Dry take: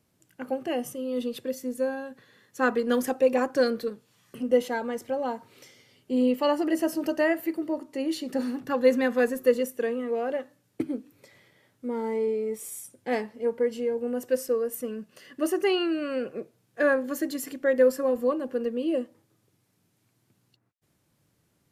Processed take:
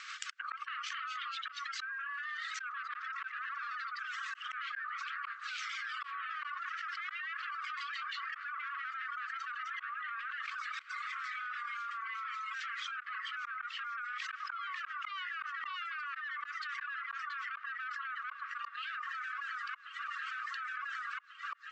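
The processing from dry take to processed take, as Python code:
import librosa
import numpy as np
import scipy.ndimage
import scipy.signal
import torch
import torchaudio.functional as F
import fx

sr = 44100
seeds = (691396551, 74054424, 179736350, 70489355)

y = scipy.ndimage.median_filter(x, 5, mode='constant')
y = fx.rotary(y, sr, hz=6.0)
y = 10.0 ** (-30.0 / 20.0) * np.tanh(y / 10.0 ** (-30.0 / 20.0))
y = fx.echo_pitch(y, sr, ms=286, semitones=1, count=2, db_per_echo=-3.0)
y = fx.brickwall_bandpass(y, sr, low_hz=1100.0, high_hz=8200.0)
y = fx.env_lowpass_down(y, sr, base_hz=2100.0, full_db=-44.0)
y = fx.high_shelf(y, sr, hz=2100.0, db=-11.5)
y = fx.echo_swing(y, sr, ms=1441, ratio=3, feedback_pct=53, wet_db=-17)
y = fx.auto_swell(y, sr, attack_ms=708.0)
y = fx.dereverb_blind(y, sr, rt60_s=1.1)
y = fx.env_flatten(y, sr, amount_pct=100)
y = F.gain(torch.from_numpy(y), 5.5).numpy()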